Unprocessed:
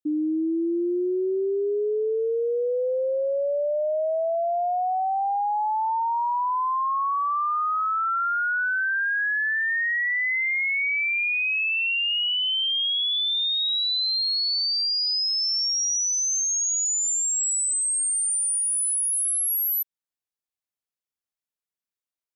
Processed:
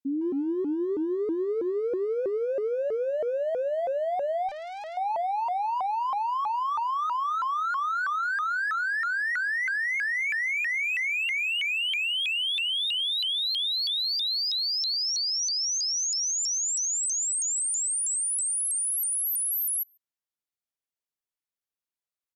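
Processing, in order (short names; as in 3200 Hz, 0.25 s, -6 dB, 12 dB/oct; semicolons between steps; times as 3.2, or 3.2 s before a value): speakerphone echo 0.15 s, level -8 dB; 4.49–4.97 tube stage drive 33 dB, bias 0.45; shaped vibrato saw up 3.1 Hz, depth 250 cents; gain -3.5 dB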